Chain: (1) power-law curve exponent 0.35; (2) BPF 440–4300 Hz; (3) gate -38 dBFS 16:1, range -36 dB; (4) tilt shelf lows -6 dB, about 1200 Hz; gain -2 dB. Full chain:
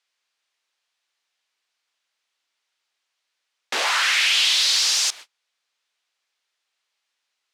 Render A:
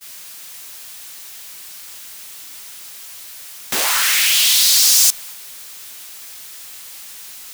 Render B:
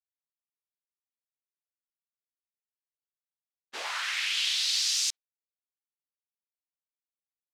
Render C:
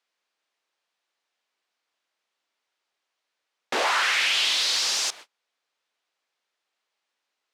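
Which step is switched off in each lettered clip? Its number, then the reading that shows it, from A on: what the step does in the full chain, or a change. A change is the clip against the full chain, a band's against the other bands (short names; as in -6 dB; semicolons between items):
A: 2, 8 kHz band +9.0 dB; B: 1, crest factor change +4.5 dB; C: 4, 500 Hz band +7.5 dB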